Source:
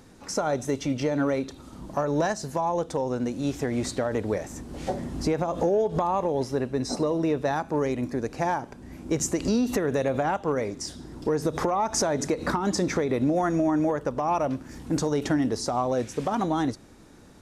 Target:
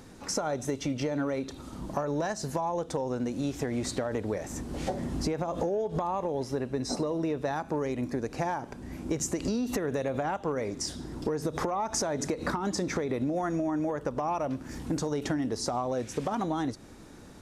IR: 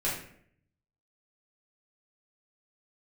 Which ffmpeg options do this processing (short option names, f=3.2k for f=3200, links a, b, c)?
-af "acompressor=threshold=-30dB:ratio=4,volume=2dB"